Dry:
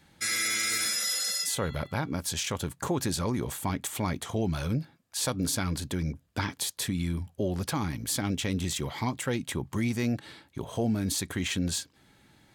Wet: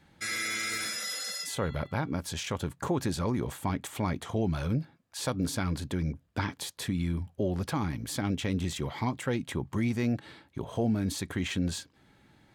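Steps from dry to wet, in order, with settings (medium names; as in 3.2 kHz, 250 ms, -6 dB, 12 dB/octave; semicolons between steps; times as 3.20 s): treble shelf 4 kHz -9.5 dB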